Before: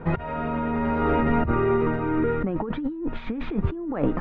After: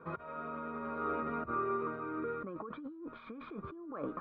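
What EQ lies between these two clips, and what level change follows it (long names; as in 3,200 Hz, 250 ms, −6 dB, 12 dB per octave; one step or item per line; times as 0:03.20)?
formant filter a
phaser with its sweep stopped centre 2,700 Hz, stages 6
+7.0 dB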